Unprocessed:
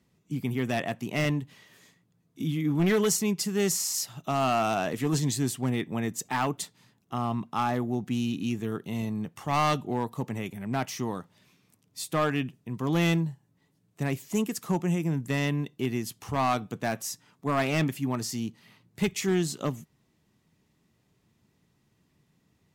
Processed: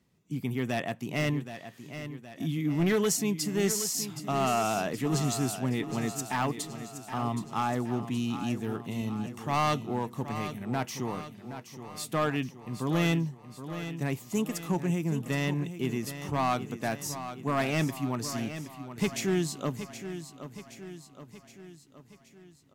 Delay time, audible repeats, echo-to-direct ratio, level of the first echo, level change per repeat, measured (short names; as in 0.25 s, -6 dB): 0.771 s, 5, -9.5 dB, -11.0 dB, -5.5 dB